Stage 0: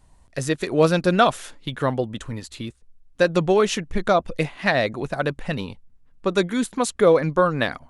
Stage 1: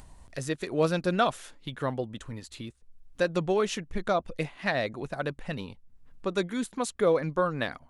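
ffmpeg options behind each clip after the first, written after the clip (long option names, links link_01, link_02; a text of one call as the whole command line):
ffmpeg -i in.wav -af "acompressor=mode=upward:threshold=-30dB:ratio=2.5,volume=-8dB" out.wav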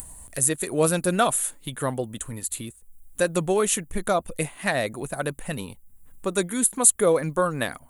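ffmpeg -i in.wav -af "aexciter=amount=15.9:drive=4.2:freq=7700,volume=3.5dB" out.wav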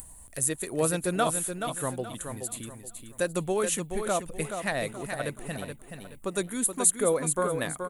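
ffmpeg -i in.wav -af "aecho=1:1:426|852|1278|1704:0.447|0.143|0.0457|0.0146,volume=-5.5dB" out.wav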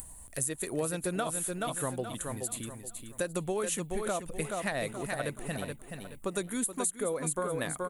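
ffmpeg -i in.wav -af "acompressor=threshold=-28dB:ratio=10" out.wav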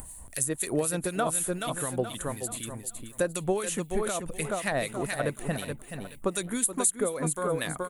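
ffmpeg -i in.wav -filter_complex "[0:a]acrossover=split=1800[link_01][link_02];[link_01]aeval=exprs='val(0)*(1-0.7/2+0.7/2*cos(2*PI*4*n/s))':channel_layout=same[link_03];[link_02]aeval=exprs='val(0)*(1-0.7/2-0.7/2*cos(2*PI*4*n/s))':channel_layout=same[link_04];[link_03][link_04]amix=inputs=2:normalize=0,volume=7dB" out.wav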